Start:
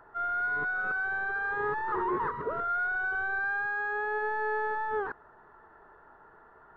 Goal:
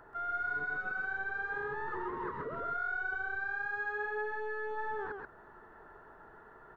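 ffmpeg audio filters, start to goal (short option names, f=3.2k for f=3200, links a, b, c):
-af "equalizer=f=1k:w=1:g=-5,alimiter=level_in=10.5dB:limit=-24dB:level=0:latency=1:release=304,volume=-10.5dB,aecho=1:1:132:0.668,volume=2.5dB"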